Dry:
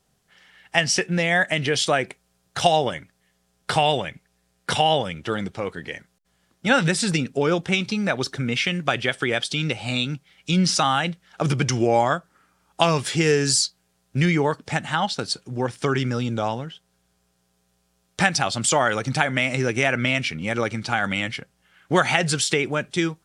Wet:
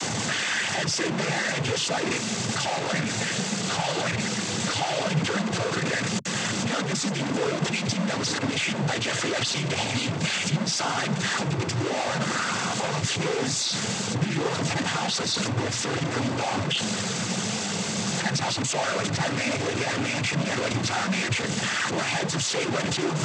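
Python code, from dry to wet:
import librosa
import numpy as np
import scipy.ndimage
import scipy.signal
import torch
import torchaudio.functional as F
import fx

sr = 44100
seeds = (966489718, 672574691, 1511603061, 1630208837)

y = np.sign(x) * np.sqrt(np.mean(np.square(x)))
y = fx.noise_vocoder(y, sr, seeds[0], bands=16)
y = F.gain(torch.from_numpy(y), -1.5).numpy()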